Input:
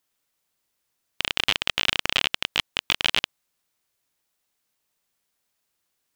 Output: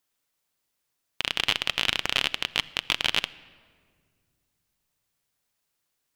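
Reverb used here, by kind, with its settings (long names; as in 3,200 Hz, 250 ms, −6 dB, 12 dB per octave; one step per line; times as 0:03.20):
rectangular room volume 3,300 cubic metres, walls mixed, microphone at 0.32 metres
level −2 dB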